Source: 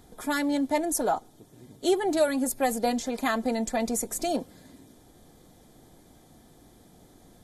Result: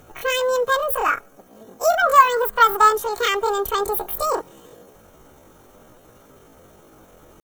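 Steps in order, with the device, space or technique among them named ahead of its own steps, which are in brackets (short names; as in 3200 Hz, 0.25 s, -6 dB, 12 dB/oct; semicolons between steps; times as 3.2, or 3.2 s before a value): 2–2.94 band shelf 860 Hz +9 dB 1.1 oct; chipmunk voice (pitch shift +10 st); gain +6 dB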